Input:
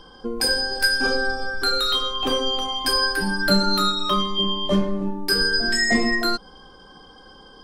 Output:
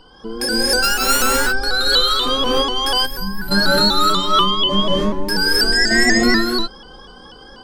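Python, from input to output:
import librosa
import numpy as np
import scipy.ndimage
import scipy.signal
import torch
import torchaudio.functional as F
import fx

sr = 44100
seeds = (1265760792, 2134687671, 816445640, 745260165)

y = fx.sample_sort(x, sr, block=32, at=(0.82, 1.22))
y = fx.rev_gated(y, sr, seeds[0], gate_ms=320, shape='rising', drr_db=-7.0)
y = fx.spec_box(y, sr, start_s=3.06, length_s=0.45, low_hz=240.0, high_hz=11000.0, gain_db=-15)
y = fx.vibrato_shape(y, sr, shape='saw_up', rate_hz=4.1, depth_cents=100.0)
y = y * 10.0 ** (-1.5 / 20.0)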